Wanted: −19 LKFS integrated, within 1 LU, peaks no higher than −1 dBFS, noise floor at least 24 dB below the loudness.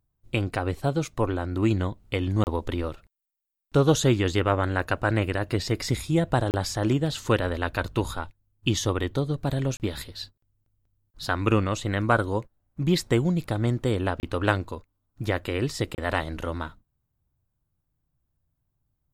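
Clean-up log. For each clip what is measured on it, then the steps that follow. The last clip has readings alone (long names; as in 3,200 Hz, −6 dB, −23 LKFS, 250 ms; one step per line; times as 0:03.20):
number of dropouts 5; longest dropout 29 ms; integrated loudness −26.5 LKFS; sample peak −6.5 dBFS; target loudness −19.0 LKFS
→ repair the gap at 0:02.44/0:06.51/0:09.77/0:14.20/0:15.95, 29 ms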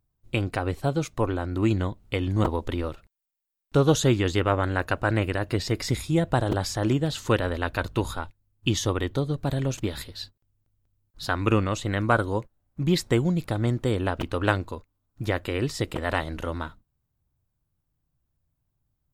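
number of dropouts 0; integrated loudness −26.5 LKFS; sample peak −6.5 dBFS; target loudness −19.0 LKFS
→ level +7.5 dB
brickwall limiter −1 dBFS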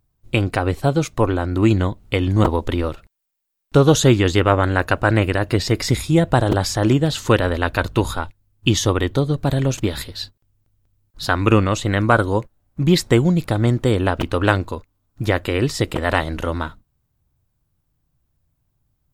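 integrated loudness −19.0 LKFS; sample peak −1.0 dBFS; background noise floor −71 dBFS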